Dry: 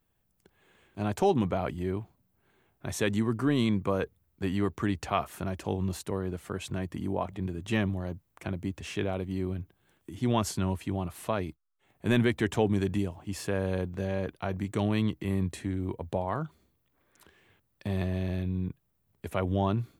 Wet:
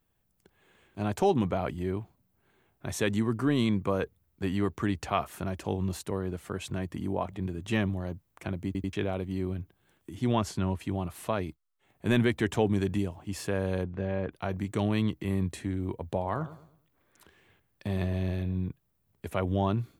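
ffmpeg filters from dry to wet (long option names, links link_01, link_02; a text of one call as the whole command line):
ffmpeg -i in.wav -filter_complex "[0:a]asettb=1/sr,asplit=3[link_01][link_02][link_03];[link_01]atrim=end=10.354[link_04];[link_02]atrim=start=10.35:end=10.8,asetpts=PTS-STARTPTS,afade=type=in:duration=0.004:curve=qsin,afade=type=out:start_time=0.446:duration=0.004:curve=qsin,lowpass=frequency=4000:poles=1[link_05];[link_03]atrim=start=10.796[link_06];[link_04][link_05]acrossfade=duration=0.004:curve1=hsin:curve2=qsin[link_07];[link_07][link_06]acrossfade=duration=0.004:curve1=qsin:curve2=hsin,asplit=3[link_08][link_09][link_10];[link_08]afade=type=out:start_time=13.83:duration=0.02[link_11];[link_09]lowpass=2600,afade=type=in:start_time=13.83:duration=0.02,afade=type=out:start_time=14.31:duration=0.02[link_12];[link_10]afade=type=in:start_time=14.31:duration=0.02[link_13];[link_11][link_12][link_13]amix=inputs=3:normalize=0,asettb=1/sr,asplit=3[link_14][link_15][link_16];[link_14]atrim=end=16.154[link_17];[link_15]atrim=start=16.15:end=18.7,asetpts=PTS-STARTPTS,afade=type=in:duration=0.004:curve=qsin,afade=type=out:start_time=2.546:duration=0.004:curve=qsin,asplit=2[link_18][link_19];[link_19]adelay=107,lowpass=frequency=2000:poles=1,volume=-14dB,asplit=2[link_20][link_21];[link_21]adelay=107,lowpass=frequency=2000:poles=1,volume=0.37,asplit=2[link_22][link_23];[link_23]adelay=107,lowpass=frequency=2000:poles=1,volume=0.37,asplit=2[link_24][link_25];[link_25]adelay=107,lowpass=frequency=2000:poles=1,volume=0.37[link_26];[link_18][link_20][link_22][link_24][link_26]amix=inputs=5:normalize=0,atrim=end_sample=112455[link_27];[link_16]atrim=start=18.696[link_28];[link_17][link_27]acrossfade=duration=0.004:curve1=hsin:curve2=qsin[link_29];[link_29][link_28]acrossfade=duration=0.004:curve1=qsin:curve2=hsin,asplit=4[link_30][link_31][link_32][link_33];[link_30]atrim=end=8.752[link_34];[link_31]atrim=start=8.658:end=8.752[link_35];[link_32]atrim=start=8.658:end=8.752[link_36];[link_33]atrim=start=8.928[link_37];[link_34][link_35]acrossfade=duration=0.004:curve1=hsin:curve2=hsin[link_38];[link_38][link_36]acrossfade=duration=0.004:curve1=hsin:curve2=hsin[link_39];[link_39][link_37]acrossfade=duration=0.004:curve1=hsin:curve2=hsin" out.wav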